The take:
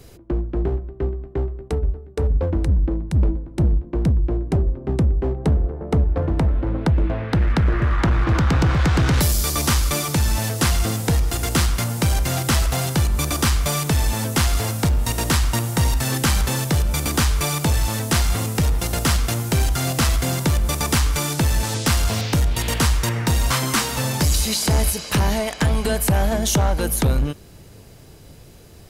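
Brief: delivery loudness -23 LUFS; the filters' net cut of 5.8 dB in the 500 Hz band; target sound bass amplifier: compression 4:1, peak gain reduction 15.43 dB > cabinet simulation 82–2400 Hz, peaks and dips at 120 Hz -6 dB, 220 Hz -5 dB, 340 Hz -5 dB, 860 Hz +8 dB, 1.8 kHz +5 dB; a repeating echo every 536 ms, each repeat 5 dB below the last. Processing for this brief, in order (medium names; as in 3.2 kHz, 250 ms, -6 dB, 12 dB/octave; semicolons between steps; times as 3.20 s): peaking EQ 500 Hz -7 dB; feedback delay 536 ms, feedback 56%, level -5 dB; compression 4:1, threshold -30 dBFS; cabinet simulation 82–2400 Hz, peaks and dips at 120 Hz -6 dB, 220 Hz -5 dB, 340 Hz -5 dB, 860 Hz +8 dB, 1.8 kHz +5 dB; trim +13 dB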